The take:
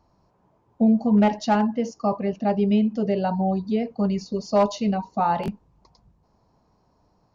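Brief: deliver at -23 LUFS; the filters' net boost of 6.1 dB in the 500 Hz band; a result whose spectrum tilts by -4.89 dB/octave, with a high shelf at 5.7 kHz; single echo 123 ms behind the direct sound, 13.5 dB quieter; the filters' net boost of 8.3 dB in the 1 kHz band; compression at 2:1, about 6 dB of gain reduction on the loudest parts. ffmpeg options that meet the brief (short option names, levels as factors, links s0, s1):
-af "equalizer=f=500:t=o:g=5,equalizer=f=1000:t=o:g=8.5,highshelf=f=5700:g=7.5,acompressor=threshold=0.112:ratio=2,aecho=1:1:123:0.211,volume=0.944"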